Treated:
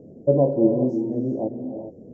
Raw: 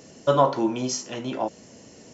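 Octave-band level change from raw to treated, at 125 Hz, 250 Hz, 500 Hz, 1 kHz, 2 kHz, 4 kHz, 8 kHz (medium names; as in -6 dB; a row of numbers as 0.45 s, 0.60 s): +6.0 dB, +6.5 dB, +3.5 dB, -12.0 dB, under -35 dB, under -35 dB, no reading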